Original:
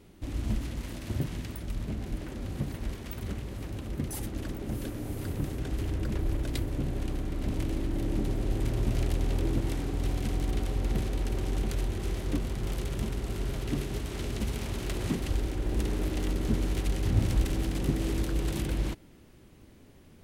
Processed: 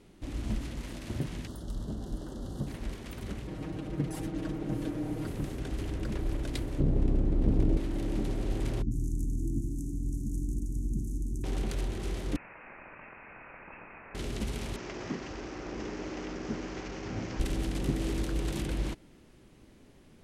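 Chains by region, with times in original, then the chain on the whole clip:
1.47–2.67 s: Butterworth band-stop 2.4 kHz, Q 2.3 + peaking EQ 2 kHz -11.5 dB 0.62 oct
3.47–5.27 s: high-pass 240 Hz 6 dB/octave + tilt EQ -2.5 dB/octave + comb 6.4 ms, depth 90%
6.80–7.77 s: tilt shelf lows +9 dB, about 760 Hz + loudspeaker Doppler distortion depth 0.86 ms
8.82–11.44 s: Chebyshev band-stop 310–6300 Hz, order 4 + bands offset in time lows, highs 90 ms, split 4.1 kHz
12.36–14.15 s: high-pass 1.1 kHz + frequency inversion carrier 2.9 kHz + level flattener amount 50%
14.76–17.40 s: one-bit delta coder 32 kbps, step -33.5 dBFS + high-pass 290 Hz 6 dB/octave + peaking EQ 3.8 kHz -11.5 dB 0.87 oct
whole clip: low-pass 11 kHz 12 dB/octave; peaking EQ 83 Hz -6 dB 0.82 oct; trim -1 dB

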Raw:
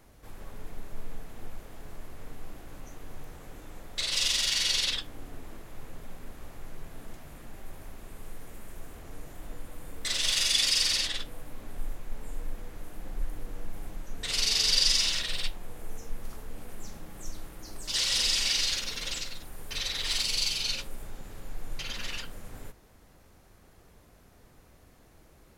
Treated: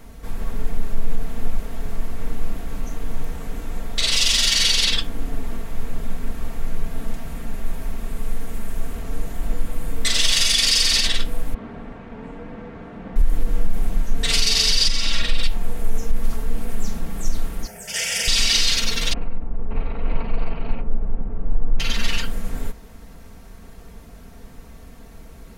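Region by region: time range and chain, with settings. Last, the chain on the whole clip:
11.54–13.16 s: band-pass 110–2100 Hz + loudspeaker Doppler distortion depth 0.38 ms
14.88–15.43 s: compression, threshold -26 dBFS + treble shelf 3.9 kHz -9.5 dB + comb 3.6 ms, depth 32%
17.67–18.28 s: high-pass 150 Hz + static phaser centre 1.1 kHz, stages 6
19.13–21.80 s: median filter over 25 samples + low-pass 2.2 kHz 24 dB/octave
whole clip: tone controls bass +6 dB, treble -1 dB; comb 4.4 ms, depth 54%; loudness maximiser +16 dB; trim -6 dB

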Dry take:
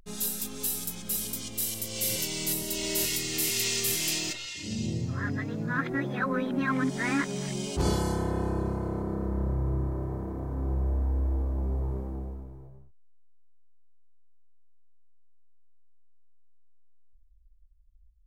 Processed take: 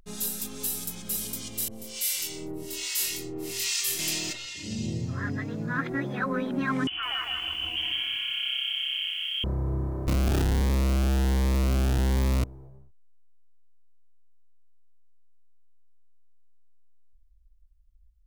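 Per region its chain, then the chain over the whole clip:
1.68–3.99 s: harmonic tremolo 1.2 Hz, depth 100%, crossover 1 kHz + doubling 23 ms -3 dB
6.87–9.44 s: compression, threshold -28 dBFS + frequency inversion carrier 3.2 kHz + bit-crushed delay 158 ms, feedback 35%, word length 9-bit, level -3.5 dB
10.07–12.44 s: bass shelf 81 Hz +11.5 dB + Schmitt trigger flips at -36.5 dBFS + Shepard-style phaser rising 1.3 Hz
whole clip: none

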